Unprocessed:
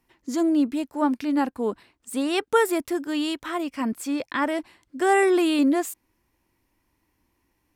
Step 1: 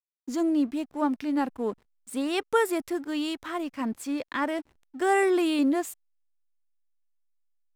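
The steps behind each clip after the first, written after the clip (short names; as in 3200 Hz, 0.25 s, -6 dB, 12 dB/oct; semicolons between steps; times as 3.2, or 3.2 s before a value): backlash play -41.5 dBFS; gain -3.5 dB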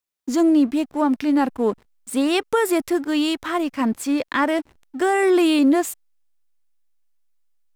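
limiter -19 dBFS, peak gain reduction 8.5 dB; gain +9 dB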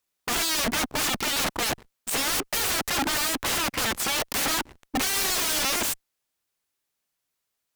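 wrapped overs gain 27 dB; added harmonics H 8 -24 dB, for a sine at -27 dBFS; gain +6.5 dB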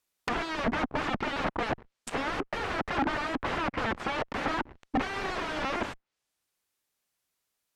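treble ducked by the level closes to 1700 Hz, closed at -28 dBFS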